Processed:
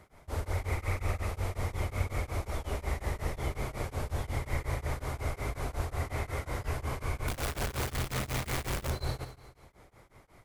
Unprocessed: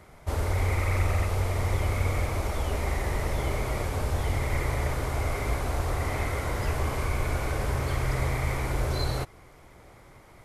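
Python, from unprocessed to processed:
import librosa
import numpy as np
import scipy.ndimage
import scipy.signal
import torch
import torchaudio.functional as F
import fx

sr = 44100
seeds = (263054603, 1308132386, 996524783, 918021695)

y = fx.clip_1bit(x, sr, at=(7.28, 8.9))
y = fx.echo_feedback(y, sr, ms=148, feedback_pct=42, wet_db=-12.5)
y = y * np.abs(np.cos(np.pi * 5.5 * np.arange(len(y)) / sr))
y = F.gain(torch.from_numpy(y), -4.0).numpy()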